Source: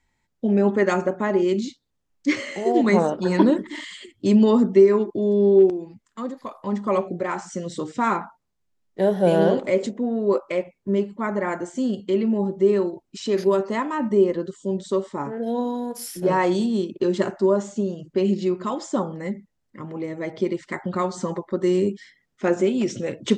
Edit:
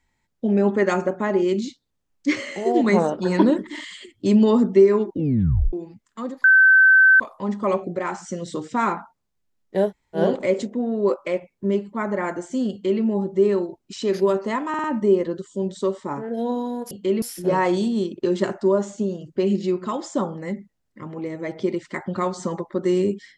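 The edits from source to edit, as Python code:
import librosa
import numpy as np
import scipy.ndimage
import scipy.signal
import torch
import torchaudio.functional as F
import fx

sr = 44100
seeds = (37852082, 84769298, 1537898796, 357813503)

y = fx.edit(x, sr, fx.tape_stop(start_s=5.07, length_s=0.66),
    fx.insert_tone(at_s=6.44, length_s=0.76, hz=1540.0, db=-9.5),
    fx.room_tone_fill(start_s=9.12, length_s=0.3, crossfade_s=0.1),
    fx.duplicate(start_s=11.95, length_s=0.31, to_s=16.0),
    fx.stutter(start_s=13.93, slice_s=0.05, count=4), tone=tone)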